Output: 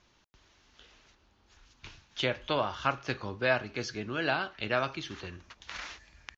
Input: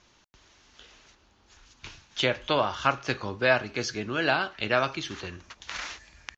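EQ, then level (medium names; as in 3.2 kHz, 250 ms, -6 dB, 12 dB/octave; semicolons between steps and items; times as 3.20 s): low-pass 6.3 kHz 12 dB/octave; bass shelf 180 Hz +3 dB; -5.0 dB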